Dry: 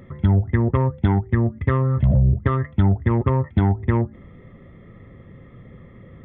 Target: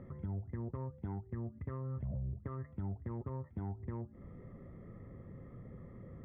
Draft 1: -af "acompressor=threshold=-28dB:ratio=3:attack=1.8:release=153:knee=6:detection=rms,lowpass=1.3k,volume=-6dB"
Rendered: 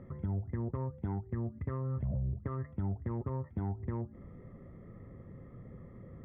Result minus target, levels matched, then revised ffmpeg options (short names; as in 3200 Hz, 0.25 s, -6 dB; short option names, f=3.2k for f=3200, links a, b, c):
compressor: peak gain reduction -5 dB
-af "acompressor=threshold=-35.5dB:ratio=3:attack=1.8:release=153:knee=6:detection=rms,lowpass=1.3k,volume=-6dB"